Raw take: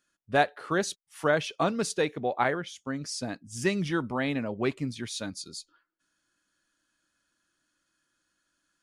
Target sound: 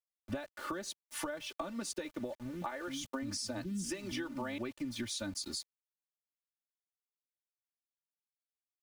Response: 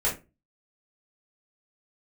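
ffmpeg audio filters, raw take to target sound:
-filter_complex "[0:a]asettb=1/sr,asplit=3[s0][s1][s2];[s0]atrim=end=2.354[s3];[s1]atrim=start=2.35:end=4.58,asetpts=PTS-STARTPTS,afade=t=in:d=0.004:c=qsin,afade=t=out:st=2.226:d=0.004:c=qsin,acrossover=split=220[s4][s5];[s5]adelay=270[s6];[s4][s6]amix=inputs=2:normalize=0,atrim=end_sample=98343[s7];[s2]atrim=start=4.576[s8];[s3][s7]acrossfade=d=0.004:c1=hsin:c2=qsin[s9];[s9][s8]acrossfade=d=0.004:c1=qsin:c2=hsin,acompressor=threshold=0.0158:ratio=16,aeval=exprs='val(0)*gte(abs(val(0)),0.00224)':c=same,aecho=1:1:3.4:0.97,acrossover=split=130[s10][s11];[s11]acompressor=threshold=0.00891:ratio=6[s12];[s10][s12]amix=inputs=2:normalize=0,volume=1.68"

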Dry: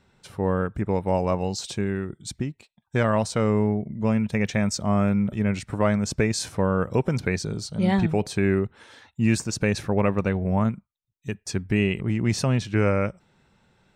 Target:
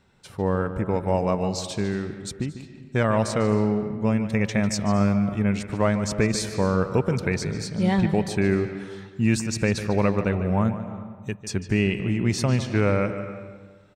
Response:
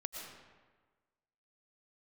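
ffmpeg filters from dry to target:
-filter_complex "[0:a]aecho=1:1:224:0.0891,asplit=2[s0][s1];[1:a]atrim=start_sample=2205,lowpass=5900,adelay=148[s2];[s1][s2]afir=irnorm=-1:irlink=0,volume=0.376[s3];[s0][s3]amix=inputs=2:normalize=0"

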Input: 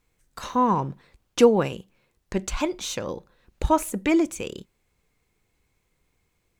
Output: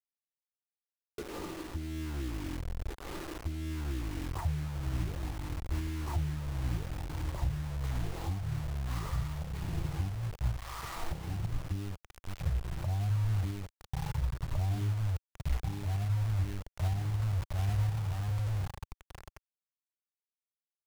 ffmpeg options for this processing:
-filter_complex "[0:a]acrossover=split=200 3800:gain=0.112 1 0.0891[s0][s1][s2];[s0][s1][s2]amix=inputs=3:normalize=0,aecho=1:1:540|945|1249|1477|1647:0.631|0.398|0.251|0.158|0.1,acompressor=threshold=0.0251:ratio=10,asetrate=13936,aresample=44100,acrusher=bits=6:mix=0:aa=0.000001,alimiter=level_in=1.88:limit=0.0631:level=0:latency=1:release=431,volume=0.531,asubboost=boost=7.5:cutoff=77"

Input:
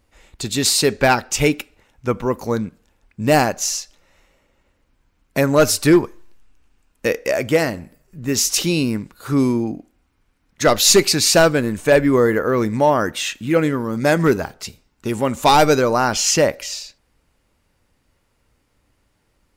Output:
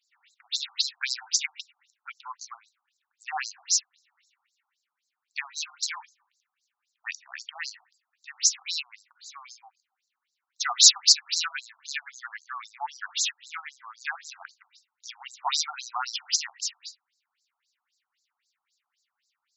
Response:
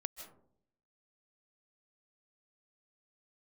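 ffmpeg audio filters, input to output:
-filter_complex "[0:a]crystalizer=i=9.5:c=0,asplit=2[s0][s1];[1:a]atrim=start_sample=2205,asetrate=66150,aresample=44100,lowshelf=f=110:g=-8[s2];[s1][s2]afir=irnorm=-1:irlink=0,volume=0.376[s3];[s0][s3]amix=inputs=2:normalize=0,afftfilt=real='re*between(b*sr/1024,930*pow(5600/930,0.5+0.5*sin(2*PI*3.8*pts/sr))/1.41,930*pow(5600/930,0.5+0.5*sin(2*PI*3.8*pts/sr))*1.41)':imag='im*between(b*sr/1024,930*pow(5600/930,0.5+0.5*sin(2*PI*3.8*pts/sr))/1.41,930*pow(5600/930,0.5+0.5*sin(2*PI*3.8*pts/sr))*1.41)':win_size=1024:overlap=0.75,volume=0.158"

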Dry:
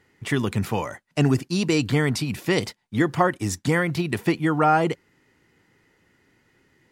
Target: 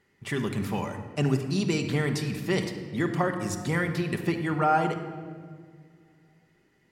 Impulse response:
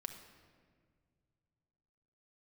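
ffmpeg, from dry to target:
-filter_complex "[1:a]atrim=start_sample=2205[s0];[0:a][s0]afir=irnorm=-1:irlink=0,volume=0.75"

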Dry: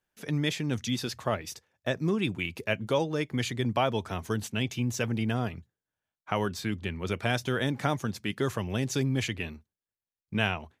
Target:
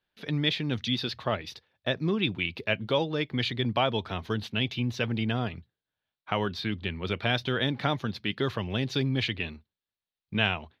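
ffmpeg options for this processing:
-af "highshelf=f=5500:t=q:w=3:g=-12.5"

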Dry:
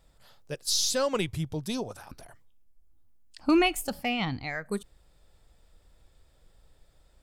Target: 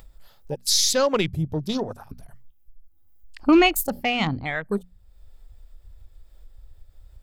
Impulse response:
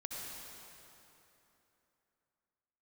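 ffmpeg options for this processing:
-filter_complex "[0:a]aexciter=amount=2.9:drive=5.5:freq=12000,afwtdn=0.00891,asplit=2[s0][s1];[s1]acompressor=mode=upward:threshold=0.02:ratio=2.5,volume=1.12[s2];[s0][s2]amix=inputs=2:normalize=0,bandreject=f=60:t=h:w=6,bandreject=f=120:t=h:w=6,bandreject=f=180:t=h:w=6,bandreject=f=240:t=h:w=6"

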